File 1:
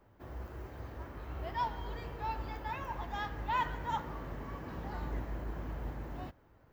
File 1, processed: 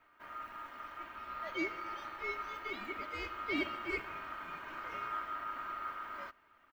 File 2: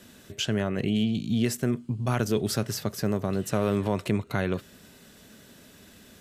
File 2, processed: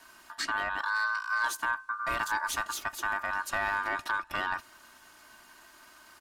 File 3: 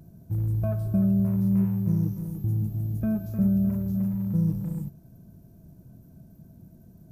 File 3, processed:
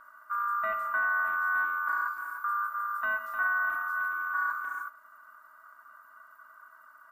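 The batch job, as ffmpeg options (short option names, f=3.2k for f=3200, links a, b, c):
-af "asoftclip=type=tanh:threshold=-17dB,aeval=exprs='val(0)*sin(2*PI*1300*n/s)':c=same,aecho=1:1:3.2:0.48,volume=-1dB"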